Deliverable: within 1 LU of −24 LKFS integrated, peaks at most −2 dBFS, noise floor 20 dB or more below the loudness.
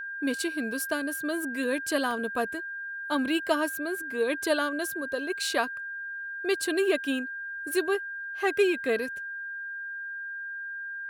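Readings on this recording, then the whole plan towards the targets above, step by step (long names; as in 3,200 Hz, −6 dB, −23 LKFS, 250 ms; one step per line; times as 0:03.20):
number of dropouts 1; longest dropout 1.1 ms; interfering tone 1,600 Hz; level of the tone −34 dBFS; integrated loudness −29.5 LKFS; sample peak −12.5 dBFS; target loudness −24.0 LKFS
→ repair the gap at 0:02.11, 1.1 ms
notch filter 1,600 Hz, Q 30
level +5.5 dB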